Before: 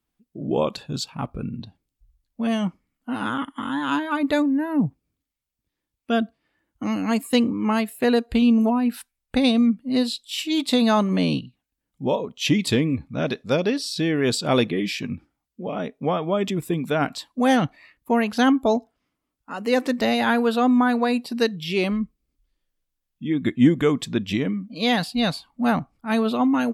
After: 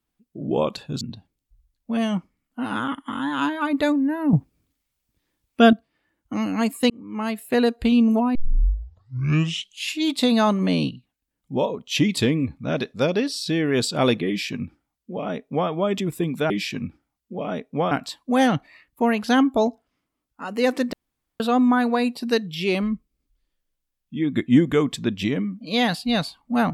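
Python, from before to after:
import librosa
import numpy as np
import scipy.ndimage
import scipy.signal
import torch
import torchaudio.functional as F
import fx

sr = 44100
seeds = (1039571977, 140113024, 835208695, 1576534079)

y = fx.edit(x, sr, fx.cut(start_s=1.01, length_s=0.5),
    fx.clip_gain(start_s=4.83, length_s=1.4, db=8.0),
    fx.fade_in_span(start_s=7.4, length_s=0.61),
    fx.tape_start(start_s=8.85, length_s=1.65),
    fx.duplicate(start_s=14.78, length_s=1.41, to_s=17.0),
    fx.room_tone_fill(start_s=20.02, length_s=0.47), tone=tone)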